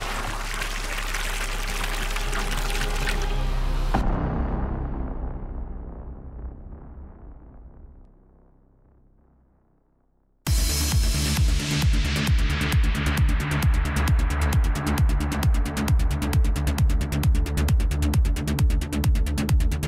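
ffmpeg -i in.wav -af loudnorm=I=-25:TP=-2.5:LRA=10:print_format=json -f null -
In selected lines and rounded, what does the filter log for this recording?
"input_i" : "-24.6",
"input_tp" : "-12.2",
"input_lra" : "8.5",
"input_thresh" : "-35.6",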